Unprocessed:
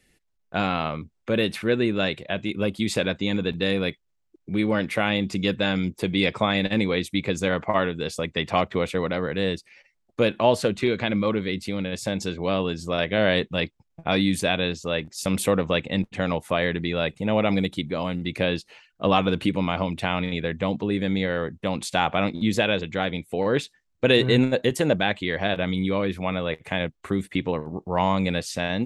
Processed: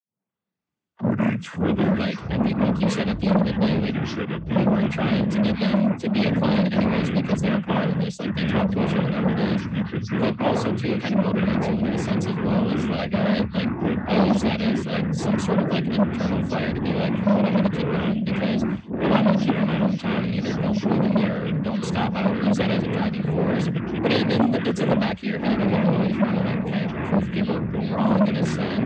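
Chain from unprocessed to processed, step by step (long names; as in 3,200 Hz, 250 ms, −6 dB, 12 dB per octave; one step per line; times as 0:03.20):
turntable start at the beginning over 2.09 s
cochlear-implant simulation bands 16
delay with pitch and tempo change per echo 198 ms, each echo −5 semitones, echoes 3
parametric band 200 Hz +12.5 dB 0.73 octaves
saturating transformer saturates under 980 Hz
level −3 dB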